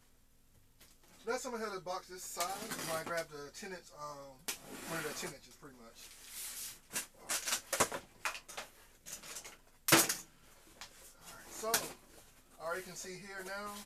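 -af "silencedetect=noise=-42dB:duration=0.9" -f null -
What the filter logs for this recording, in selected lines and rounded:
silence_start: 0.00
silence_end: 1.27 | silence_duration: 1.27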